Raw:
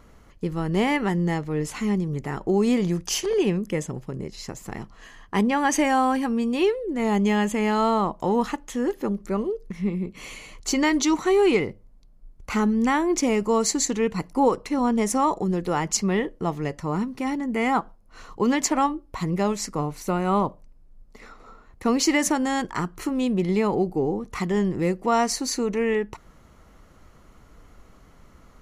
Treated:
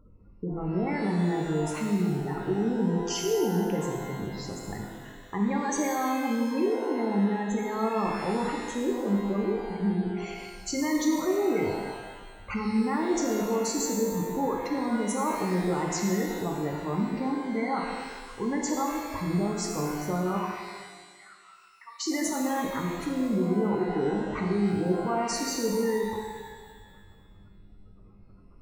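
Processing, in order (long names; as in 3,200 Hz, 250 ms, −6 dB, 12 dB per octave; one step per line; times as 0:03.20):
gate on every frequency bin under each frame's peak −15 dB strong
brickwall limiter −19 dBFS, peak gain reduction 9 dB
0:20.37–0:22.06: elliptic high-pass filter 960 Hz, stop band 40 dB
reverb with rising layers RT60 1.5 s, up +12 semitones, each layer −8 dB, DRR 0 dB
level −4.5 dB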